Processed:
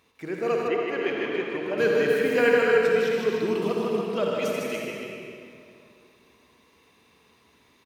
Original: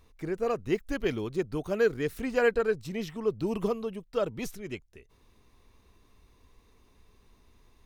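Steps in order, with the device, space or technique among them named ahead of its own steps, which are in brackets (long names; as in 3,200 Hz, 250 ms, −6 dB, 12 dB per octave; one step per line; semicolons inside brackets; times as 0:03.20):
stadium PA (high-pass filter 180 Hz 12 dB per octave; parametric band 2,500 Hz +6.5 dB 1.2 octaves; loudspeakers that aren't time-aligned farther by 53 metres −4 dB, 99 metres −7 dB; convolution reverb RT60 2.5 s, pre-delay 49 ms, DRR 0 dB)
0:00.68–0:01.78: bass and treble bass −11 dB, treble −15 dB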